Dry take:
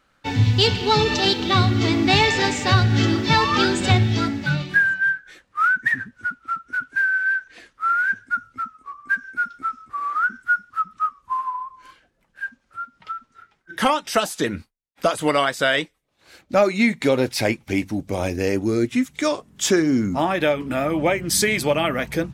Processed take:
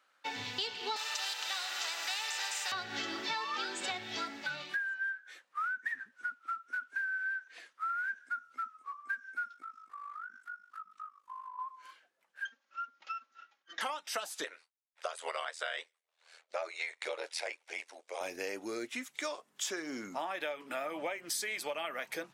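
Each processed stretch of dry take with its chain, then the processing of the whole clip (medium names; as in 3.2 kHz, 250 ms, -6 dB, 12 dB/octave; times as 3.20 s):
0.96–2.72 s: high-pass 830 Hz 24 dB/octave + comb of notches 1.1 kHz + spectrum-flattening compressor 2:1
8.18–8.60 s: upward compressor, threshold -42 dBFS + doubling 26 ms -13 dB
9.54–11.59 s: compression 4:1, threshold -35 dBFS + AM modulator 50 Hz, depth 60%
12.45–13.81 s: comb filter that takes the minimum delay 3.6 ms + steep low-pass 7 kHz 96 dB/octave
14.44–18.21 s: elliptic band-pass 460–9400 Hz + ring modulator 41 Hz
whole clip: high-pass 620 Hz 12 dB/octave; compression 5:1, threshold -28 dBFS; trim -6.5 dB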